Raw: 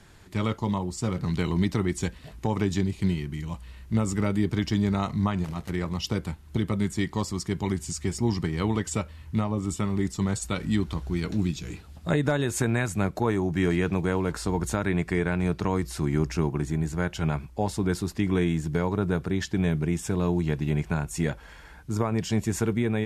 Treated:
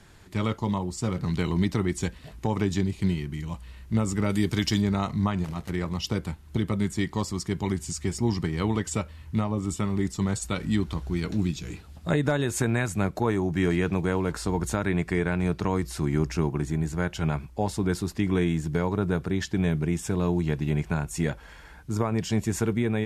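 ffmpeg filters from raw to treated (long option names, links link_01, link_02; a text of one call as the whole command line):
ffmpeg -i in.wav -filter_complex "[0:a]asplit=3[link_01][link_02][link_03];[link_01]afade=type=out:start_time=4.28:duration=0.02[link_04];[link_02]highshelf=frequency=2700:gain=11,afade=type=in:start_time=4.28:duration=0.02,afade=type=out:start_time=4.8:duration=0.02[link_05];[link_03]afade=type=in:start_time=4.8:duration=0.02[link_06];[link_04][link_05][link_06]amix=inputs=3:normalize=0" out.wav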